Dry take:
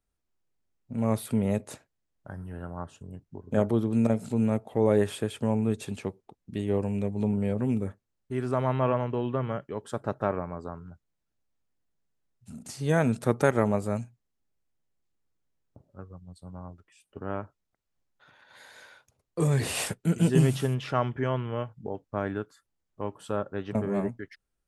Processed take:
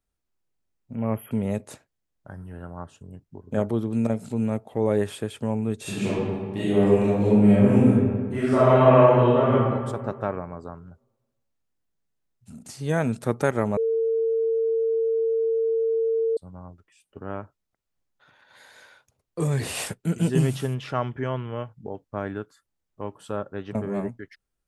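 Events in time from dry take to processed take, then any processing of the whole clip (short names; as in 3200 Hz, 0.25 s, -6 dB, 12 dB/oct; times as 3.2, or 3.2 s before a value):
0.95–1.32 spectral delete 3300–11000 Hz
5.81–9.52 reverb throw, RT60 1.7 s, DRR -11 dB
13.77–16.37 bleep 452 Hz -20 dBFS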